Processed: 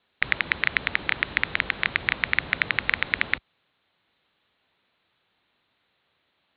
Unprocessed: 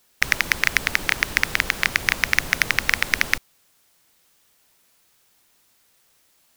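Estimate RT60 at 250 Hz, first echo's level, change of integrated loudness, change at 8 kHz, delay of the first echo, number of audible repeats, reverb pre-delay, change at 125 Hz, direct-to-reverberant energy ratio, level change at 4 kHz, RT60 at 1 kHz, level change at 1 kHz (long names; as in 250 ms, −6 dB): no reverb audible, no echo audible, −4.0 dB, below −40 dB, no echo audible, no echo audible, no reverb audible, −4.0 dB, no reverb audible, −5.5 dB, no reverb audible, −3.5 dB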